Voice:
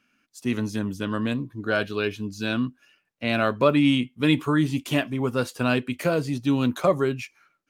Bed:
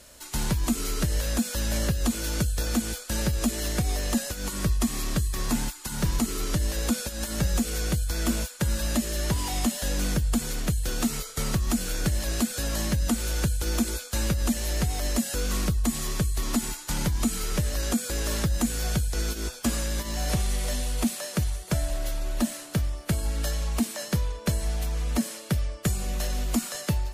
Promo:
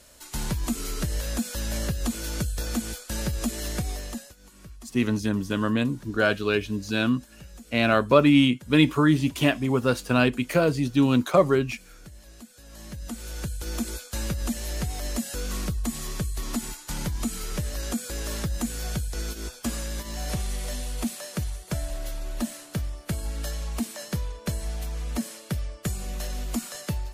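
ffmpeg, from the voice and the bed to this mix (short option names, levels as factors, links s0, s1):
-filter_complex "[0:a]adelay=4500,volume=1.26[s0];[1:a]volume=5.31,afade=t=out:st=3.76:d=0.6:silence=0.125893,afade=t=in:st=12.64:d=1.3:silence=0.141254[s1];[s0][s1]amix=inputs=2:normalize=0"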